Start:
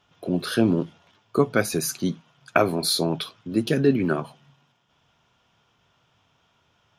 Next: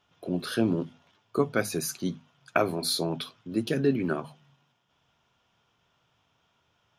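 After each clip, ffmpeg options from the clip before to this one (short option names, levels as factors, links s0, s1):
-af "bandreject=f=50:t=h:w=6,bandreject=f=100:t=h:w=6,bandreject=f=150:t=h:w=6,bandreject=f=200:t=h:w=6,bandreject=f=250:t=h:w=6,volume=0.562"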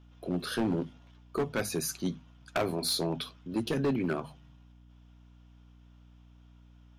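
-af "aeval=exprs='val(0)+0.00224*(sin(2*PI*60*n/s)+sin(2*PI*2*60*n/s)/2+sin(2*PI*3*60*n/s)/3+sin(2*PI*4*60*n/s)/4+sin(2*PI*5*60*n/s)/5)':c=same,volume=12.6,asoftclip=hard,volume=0.0794,volume=0.841"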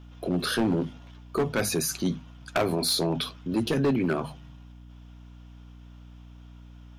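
-af "alimiter=level_in=1.58:limit=0.0631:level=0:latency=1:release=19,volume=0.631,volume=2.82"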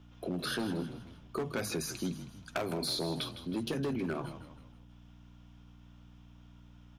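-filter_complex "[0:a]acrossover=split=81|5600[s0][s1][s2];[s0]acompressor=threshold=0.00141:ratio=4[s3];[s1]acompressor=threshold=0.0562:ratio=4[s4];[s2]acompressor=threshold=0.0141:ratio=4[s5];[s3][s4][s5]amix=inputs=3:normalize=0,asplit=2[s6][s7];[s7]asplit=4[s8][s9][s10][s11];[s8]adelay=159,afreqshift=-40,volume=0.266[s12];[s9]adelay=318,afreqshift=-80,volume=0.115[s13];[s10]adelay=477,afreqshift=-120,volume=0.049[s14];[s11]adelay=636,afreqshift=-160,volume=0.0211[s15];[s12][s13][s14][s15]amix=inputs=4:normalize=0[s16];[s6][s16]amix=inputs=2:normalize=0,volume=0.501"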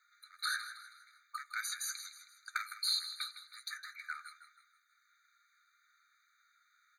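-af "afftfilt=real='re*eq(mod(floor(b*sr/1024/1200),2),1)':imag='im*eq(mod(floor(b*sr/1024/1200),2),1)':win_size=1024:overlap=0.75,volume=1.41"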